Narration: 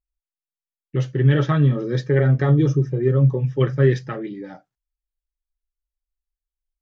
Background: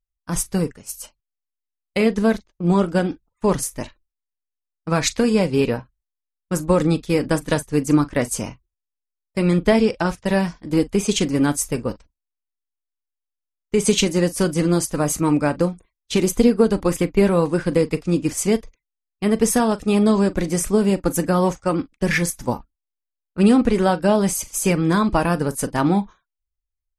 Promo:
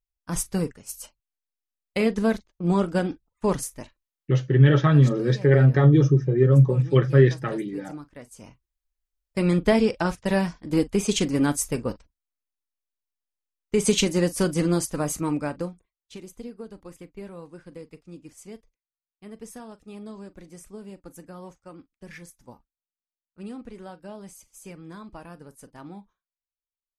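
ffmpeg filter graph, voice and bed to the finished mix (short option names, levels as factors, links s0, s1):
-filter_complex "[0:a]adelay=3350,volume=1.06[s0];[1:a]volume=5.31,afade=t=out:st=3.49:d=0.6:silence=0.125893,afade=t=in:st=8.36:d=0.76:silence=0.112202,afade=t=out:st=14.57:d=1.64:silence=0.1[s1];[s0][s1]amix=inputs=2:normalize=0"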